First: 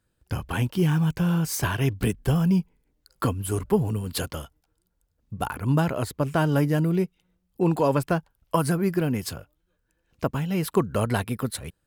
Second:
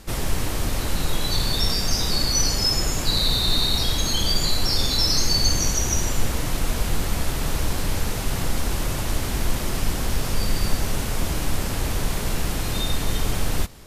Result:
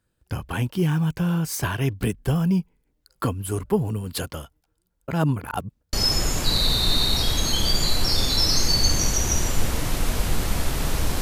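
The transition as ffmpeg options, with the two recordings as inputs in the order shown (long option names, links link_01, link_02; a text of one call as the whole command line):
ffmpeg -i cue0.wav -i cue1.wav -filter_complex "[0:a]apad=whole_dur=11.21,atrim=end=11.21,asplit=2[link_01][link_02];[link_01]atrim=end=5.082[link_03];[link_02]atrim=start=5.078:end=5.932,asetpts=PTS-STARTPTS,areverse[link_04];[1:a]atrim=start=2.538:end=7.82[link_05];[link_03][link_04]acrossfade=duration=0.004:curve1=hsin:curve2=hsin[link_06];[link_06][link_05]acrossfade=duration=0.004:curve1=hsin:curve2=hsin" out.wav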